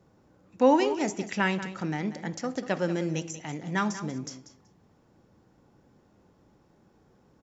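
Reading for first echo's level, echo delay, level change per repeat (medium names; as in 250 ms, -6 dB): -13.0 dB, 189 ms, -16.0 dB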